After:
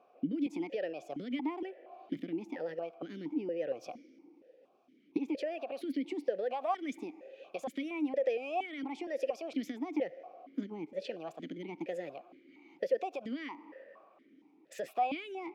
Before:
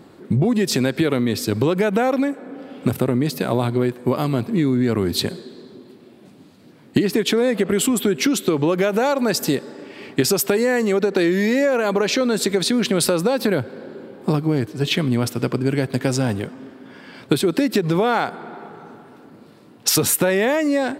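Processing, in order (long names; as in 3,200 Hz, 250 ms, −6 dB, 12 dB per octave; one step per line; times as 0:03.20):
wrong playback speed 33 rpm record played at 45 rpm
formant filter that steps through the vowels 4.3 Hz
level −7.5 dB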